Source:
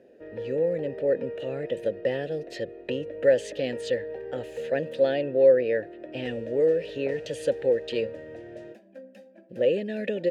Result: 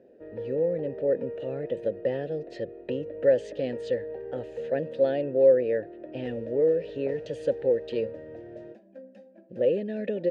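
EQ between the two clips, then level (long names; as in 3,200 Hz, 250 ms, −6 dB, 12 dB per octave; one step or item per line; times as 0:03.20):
low-pass filter 4,300 Hz 12 dB per octave
parametric band 2,600 Hz −8 dB 2.1 octaves
0.0 dB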